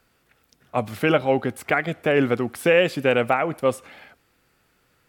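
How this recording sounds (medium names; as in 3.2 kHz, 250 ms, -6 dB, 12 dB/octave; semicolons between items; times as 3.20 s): noise floor -66 dBFS; spectral tilt -4.0 dB/octave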